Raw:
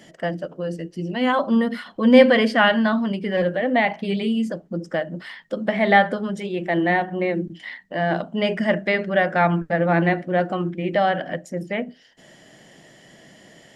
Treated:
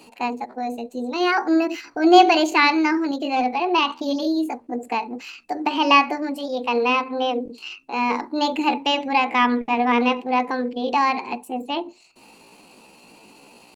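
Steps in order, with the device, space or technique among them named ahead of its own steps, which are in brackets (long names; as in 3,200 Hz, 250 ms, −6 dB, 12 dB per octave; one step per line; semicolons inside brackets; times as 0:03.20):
chipmunk voice (pitch shifter +6 semitones)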